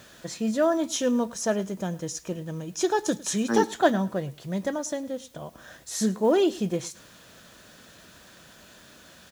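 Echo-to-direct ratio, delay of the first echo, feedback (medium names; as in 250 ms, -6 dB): -21.0 dB, 106 ms, 23%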